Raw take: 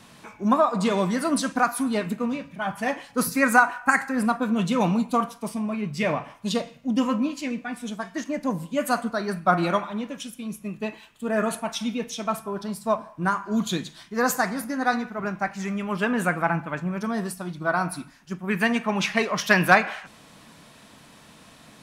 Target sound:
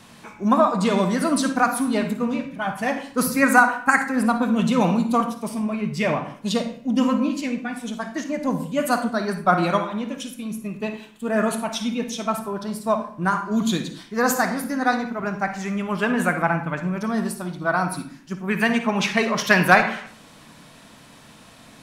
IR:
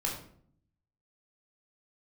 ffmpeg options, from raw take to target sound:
-filter_complex "[0:a]asplit=2[link_01][link_02];[1:a]atrim=start_sample=2205,asetrate=74970,aresample=44100,adelay=54[link_03];[link_02][link_03]afir=irnorm=-1:irlink=0,volume=-9.5dB[link_04];[link_01][link_04]amix=inputs=2:normalize=0,volume=2dB"

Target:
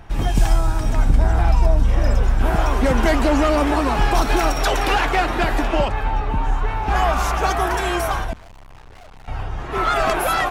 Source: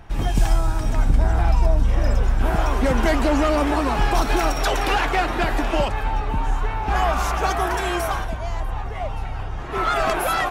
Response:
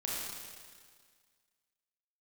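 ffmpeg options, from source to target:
-filter_complex "[0:a]asettb=1/sr,asplit=3[link_01][link_02][link_03];[link_01]atrim=end=5.674[link_04];[link_02]atrim=start=5.67:end=6.68,asetpts=PTS-STARTPTS,afade=type=in:duration=0.004:curve=qsin,afade=type=out:start_time=1.006:duration=0.004:curve=qsin,highshelf=frequency=5600:gain=-8[link_05];[link_03]atrim=start=6.676[link_06];[link_04][link_05]acrossfade=duration=0.004:curve1=hsin:curve2=qsin[link_07];[link_07][link_06]acrossfade=duration=0.004:curve1=qsin:curve2=hsin,asettb=1/sr,asplit=3[link_08][link_09][link_10];[link_08]atrim=end=8.334[link_11];[link_09]atrim=start=8.33:end=9.28,asetpts=PTS-STARTPTS,afade=type=in:duration=0.004:curve=qsin,afade=type=out:start_time=0.946:duration=0.004:curve=qsin,aeval=exprs='(tanh(158*val(0)+0.8)-tanh(0.8))/158':channel_layout=same[link_12];[link_10]atrim=start=9.276[link_13];[link_11][link_12]acrossfade=duration=0.004:curve1=hsin:curve2=qsin[link_14];[link_14][link_13]acrossfade=duration=0.004:curve1=qsin:curve2=hsin,volume=2dB"

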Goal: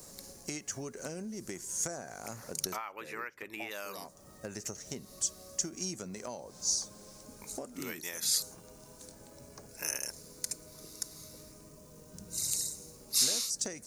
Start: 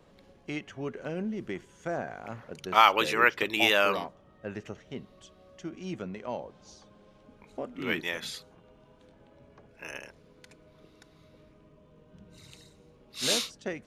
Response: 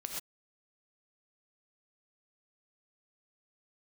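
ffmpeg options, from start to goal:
-filter_complex "[0:a]acrossover=split=4000[link_01][link_02];[link_02]acompressor=threshold=-48dB:ratio=4:attack=1:release=60[link_03];[link_01][link_03]amix=inputs=2:normalize=0,asplit=3[link_04][link_05][link_06];[link_04]afade=type=out:start_time=2.75:duration=0.02[link_07];[link_05]highshelf=frequency=3300:width_type=q:width=1.5:gain=-13.5,afade=type=in:start_time=2.75:duration=0.02,afade=type=out:start_time=3.7:duration=0.02[link_08];[link_06]afade=type=in:start_time=3.7:duration=0.02[link_09];[link_07][link_08][link_09]amix=inputs=3:normalize=0,acompressor=threshold=-41dB:ratio=10,aexciter=amount=13.9:drive=7.3:freq=4900,volume=3dB"

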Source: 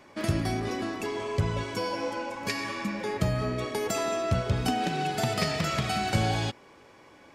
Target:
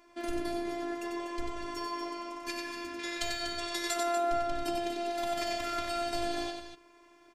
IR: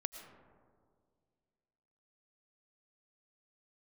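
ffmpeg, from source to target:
-filter_complex "[0:a]asettb=1/sr,asplit=3[link_01][link_02][link_03];[link_01]atrim=end=2.994[link_04];[link_02]atrim=start=2.99:end=3.94,asetpts=PTS-STARTPTS,afade=type=in:duration=0.004:curve=qsin,afade=type=out:start_time=0.946:duration=0.004:curve=qsin,equalizer=frequency=250:width_type=o:width=1:gain=-9,equalizer=frequency=2000:width_type=o:width=1:gain=5,equalizer=frequency=4000:width_type=o:width=1:gain=11,equalizer=frequency=8000:width_type=o:width=1:gain=9[link_05];[link_03]atrim=start=3.936[link_06];[link_04][link_05]acrossfade=duration=0.004:curve1=hsin:curve2=qsin[link_07];[link_07][link_06]acrossfade=duration=0.004:curve1=qsin:curve2=hsin,aecho=1:1:93.29|242:0.562|0.355,afftfilt=real='hypot(re,im)*cos(PI*b)':imag='0':win_size=512:overlap=0.75,volume=-3.5dB"

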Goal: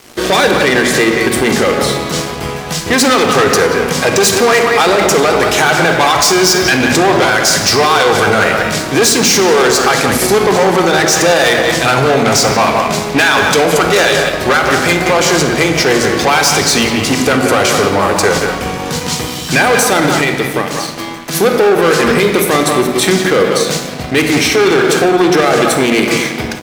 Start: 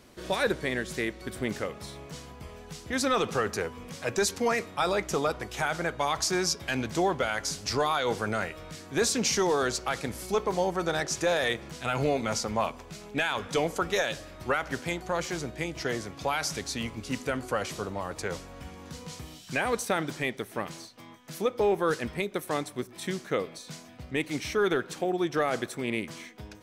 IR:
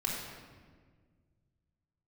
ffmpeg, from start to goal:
-filter_complex "[0:a]asplit=2[link_01][link_02];[link_02]adelay=180,highpass=300,lowpass=3400,asoftclip=type=hard:threshold=-25.5dB,volume=-9dB[link_03];[link_01][link_03]amix=inputs=2:normalize=0,asettb=1/sr,asplit=3[link_04][link_05][link_06];[link_04]atrim=end=20.244[link_07];[link_05]atrim=start=20.24:end=21.35,asetpts=PTS-STARTPTS,afade=type=in:duration=0.004:curve=qsin,afade=type=out:start_time=1.106:duration=0.004:curve=qsin,acompressor=threshold=-41dB:ratio=2[link_08];[link_06]atrim=start=21.346[link_09];[link_07][link_08]acrossfade=duration=0.004:curve1=hsin:curve2=qsin[link_10];[link_10][link_09]acrossfade=duration=0.004:curve1=qsin:curve2=hsin,asoftclip=type=tanh:threshold=-30.5dB,highpass=frequency=220:poles=1,asplit=2[link_11][link_12];[1:a]atrim=start_sample=2205[link_13];[link_12][link_13]afir=irnorm=-1:irlink=0,volume=-5dB[link_14];[link_11][link_14]amix=inputs=2:normalize=0,aeval=exprs='sgn(val(0))*max(abs(val(0))-0.00282,0)':channel_layout=same,alimiter=level_in=25.5dB:limit=-1dB:release=50:level=0:latency=1,volume=-1dB"

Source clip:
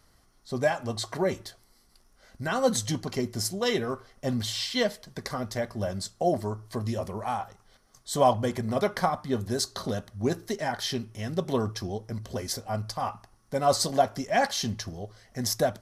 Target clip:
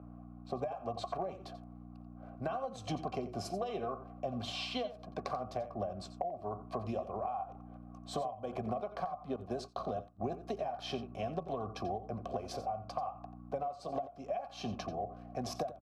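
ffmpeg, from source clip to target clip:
ffmpeg -i in.wav -filter_complex "[0:a]acrossover=split=270|1900[link_01][link_02][link_03];[link_03]aeval=exprs='sgn(val(0))*max(abs(val(0))-0.00133,0)':channel_layout=same[link_04];[link_01][link_02][link_04]amix=inputs=3:normalize=0,aeval=exprs='val(0)+0.0112*(sin(2*PI*60*n/s)+sin(2*PI*2*60*n/s)/2+sin(2*PI*3*60*n/s)/3+sin(2*PI*4*60*n/s)/4+sin(2*PI*5*60*n/s)/5)':channel_layout=same,asplit=3[link_05][link_06][link_07];[link_05]bandpass=frequency=730:width_type=q:width=8,volume=0dB[link_08];[link_06]bandpass=frequency=1090:width_type=q:width=8,volume=-6dB[link_09];[link_07]bandpass=frequency=2440:width_type=q:width=8,volume=-9dB[link_10];[link_08][link_09][link_10]amix=inputs=3:normalize=0,acompressor=threshold=-39dB:ratio=6,lowshelf=frequency=430:gain=9.5,acrossover=split=130[link_11][link_12];[link_12]acompressor=threshold=-47dB:ratio=10[link_13];[link_11][link_13]amix=inputs=2:normalize=0,asplit=2[link_14][link_15];[link_15]aecho=0:1:88:0.211[link_16];[link_14][link_16]amix=inputs=2:normalize=0,asettb=1/sr,asplit=3[link_17][link_18][link_19];[link_17]atrim=end=9.364[link_20];[link_18]atrim=start=9.36:end=10.2,asetpts=PTS-STARTPTS,afade=type=in:duration=0.004:curve=qsin,afade=type=out:start_time=0.836:duration=0.004:curve=qsin,agate=range=-33dB:threshold=-50dB:ratio=3:detection=peak[link_21];[link_19]atrim=start=10.196[link_22];[link_20][link_21]acrossfade=duration=0.004:curve1=hsin:curve2=qsin[link_23];[link_23][link_22]acrossfade=duration=0.004:curve1=qsin:curve2=hsin,volume=12.5dB" out.wav

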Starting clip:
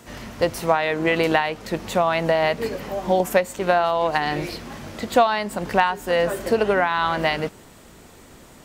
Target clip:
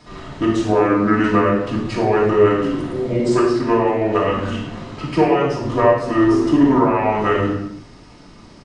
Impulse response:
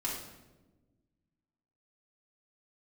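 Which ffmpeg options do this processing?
-filter_complex "[0:a]lowpass=11000,equalizer=frequency=100:width_type=o:width=0.24:gain=-11.5,asetrate=28595,aresample=44100,atempo=1.54221[link_01];[1:a]atrim=start_sample=2205,afade=type=out:start_time=0.41:duration=0.01,atrim=end_sample=18522[link_02];[link_01][link_02]afir=irnorm=-1:irlink=0"

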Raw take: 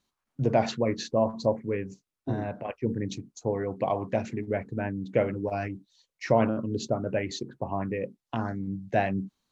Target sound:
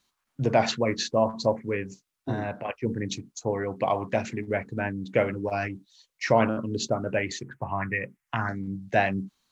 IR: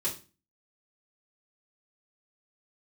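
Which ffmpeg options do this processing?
-filter_complex "[0:a]asettb=1/sr,asplit=3[link_01][link_02][link_03];[link_01]atrim=end=7.324[link_04];[link_02]atrim=start=7.32:end=8.49,asetpts=PTS-STARTPTS,afade=type=in:duration=0.004:curve=qsin,afade=type=out:start_time=1.166:duration=0.004:curve=qsin,equalizer=frequency=125:width_type=o:width=1:gain=4,equalizer=frequency=250:width_type=o:width=1:gain=-5,equalizer=frequency=500:width_type=o:width=1:gain=-6,equalizer=frequency=2000:width_type=o:width=1:gain=11,equalizer=frequency=4000:width_type=o:width=1:gain=-12[link_05];[link_03]atrim=start=8.486[link_06];[link_04][link_05]acrossfade=duration=0.004:curve1=hsin:curve2=qsin[link_07];[link_07][link_06]acrossfade=duration=0.004:curve1=qsin:curve2=hsin,acrossover=split=920[link_08][link_09];[link_09]acontrast=77[link_10];[link_08][link_10]amix=inputs=2:normalize=0"

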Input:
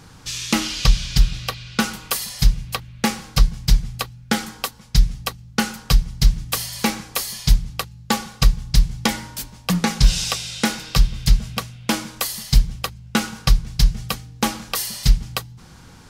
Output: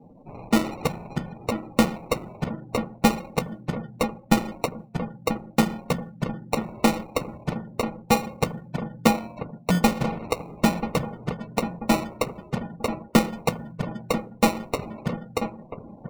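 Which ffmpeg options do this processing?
ffmpeg -i in.wav -filter_complex "[0:a]asettb=1/sr,asplit=3[link_01][link_02][link_03];[link_01]atrim=end=8.744[link_04];[link_02]atrim=start=8.74:end=9.89,asetpts=PTS-STARTPTS,afade=type=in:duration=0.004:curve=qsin,afade=type=out:start_time=1.146:duration=0.004:curve=qsin,adynamicsmooth=sensitivity=2:basefreq=1100[link_05];[link_03]atrim=start=9.886[link_06];[link_04][link_05]acrossfade=duration=0.004:curve1=hsin:curve2=qsin[link_07];[link_07][link_06]acrossfade=duration=0.004:curve1=qsin:curve2=hsin,highpass=frequency=170:width=0.5412,highpass=frequency=170:width=1.3066,equalizer=frequency=240:width_type=q:width=4:gain=4,equalizer=frequency=410:width_type=q:width=4:gain=-8,equalizer=frequency=620:width_type=q:width=4:gain=10,equalizer=frequency=1100:width_type=q:width=4:gain=5,equalizer=frequency=1900:width_type=q:width=4:gain=5,lowpass=frequency=2300:width=0.5412,lowpass=frequency=2300:width=1.3066,acrusher=samples=27:mix=1:aa=0.000001,asplit=2[link_08][link_09];[link_09]adelay=987,lowpass=frequency=1800:poles=1,volume=-9.5dB,asplit=2[link_10][link_11];[link_11]adelay=987,lowpass=frequency=1800:poles=1,volume=0.51,asplit=2[link_12][link_13];[link_13]adelay=987,lowpass=frequency=1800:poles=1,volume=0.51,asplit=2[link_14][link_15];[link_15]adelay=987,lowpass=frequency=1800:poles=1,volume=0.51,asplit=2[link_16][link_17];[link_17]adelay=987,lowpass=frequency=1800:poles=1,volume=0.51,asplit=2[link_18][link_19];[link_19]adelay=987,lowpass=frequency=1800:poles=1,volume=0.51[link_20];[link_08][link_10][link_12][link_14][link_16][link_18][link_20]amix=inputs=7:normalize=0,afftdn=noise_reduction=33:noise_floor=-43" out.wav

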